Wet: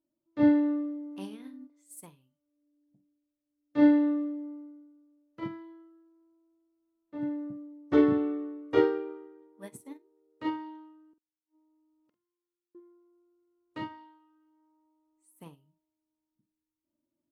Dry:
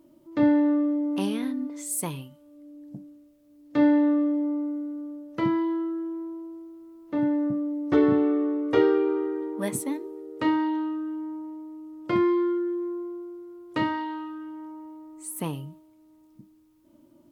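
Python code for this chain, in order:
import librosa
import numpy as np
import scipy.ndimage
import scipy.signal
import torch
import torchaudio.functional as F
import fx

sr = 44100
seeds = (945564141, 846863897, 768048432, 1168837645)

y = fx.gate_flip(x, sr, shuts_db=-32.0, range_db=-37, at=(11.13, 12.75))
y = fx.doubler(y, sr, ms=47.0, db=-11.5)
y = fx.upward_expand(y, sr, threshold_db=-35.0, expansion=2.5)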